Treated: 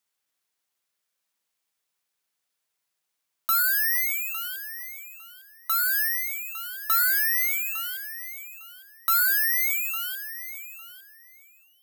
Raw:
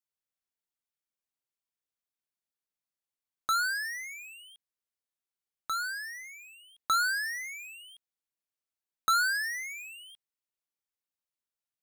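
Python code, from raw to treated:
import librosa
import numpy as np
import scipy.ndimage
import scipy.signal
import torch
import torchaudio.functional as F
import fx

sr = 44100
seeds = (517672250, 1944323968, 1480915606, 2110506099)

p1 = fx.over_compress(x, sr, threshold_db=-38.0, ratio=-1.0)
p2 = x + (p1 * librosa.db_to_amplitude(-2.0))
p3 = fx.weighting(p2, sr, curve='A')
p4 = 10.0 ** (-24.5 / 20.0) * np.tanh(p3 / 10.0 ** (-24.5 / 20.0))
p5 = (np.kron(p4[::3], np.eye(3)[0]) * 3)[:len(p4)]
p6 = scipy.signal.sosfilt(scipy.signal.butter(4, 82.0, 'highpass', fs=sr, output='sos'), p5)
p7 = fx.hum_notches(p6, sr, base_hz=60, count=7)
p8 = p7 + fx.echo_feedback(p7, sr, ms=855, feedback_pct=17, wet_db=-13.0, dry=0)
y = p8 * librosa.db_to_amplitude(2.0)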